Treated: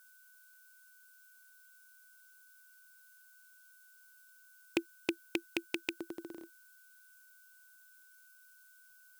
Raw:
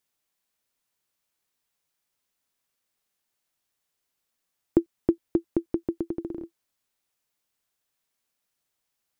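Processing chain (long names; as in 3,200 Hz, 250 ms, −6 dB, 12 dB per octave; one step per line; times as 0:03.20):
loose part that buzzes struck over −24 dBFS, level −20 dBFS
steady tone 1,500 Hz −62 dBFS
first difference
level +13.5 dB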